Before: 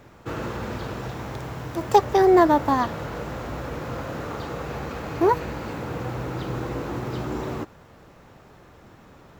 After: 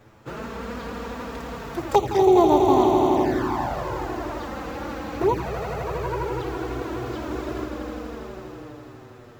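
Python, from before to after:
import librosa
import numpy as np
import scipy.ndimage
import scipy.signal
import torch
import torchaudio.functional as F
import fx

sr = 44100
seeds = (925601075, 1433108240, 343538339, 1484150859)

y = fx.echo_swell(x, sr, ms=82, loudest=5, wet_db=-9)
y = fx.env_flanger(y, sr, rest_ms=10.0, full_db=-13.5)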